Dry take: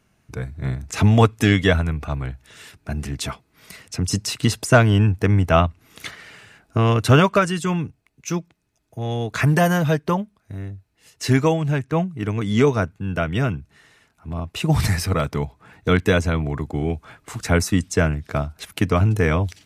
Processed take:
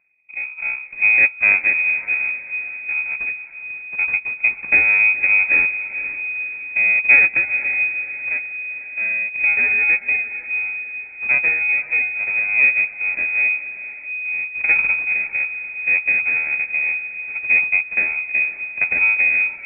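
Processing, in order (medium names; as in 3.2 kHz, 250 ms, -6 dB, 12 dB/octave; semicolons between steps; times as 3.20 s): bit-reversed sample order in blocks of 32 samples; full-wave rectifier; rotary cabinet horn 1.2 Hz; on a send: echo that smears into a reverb 491 ms, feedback 50%, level -12 dB; on the sum: frequency inversion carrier 2.5 kHz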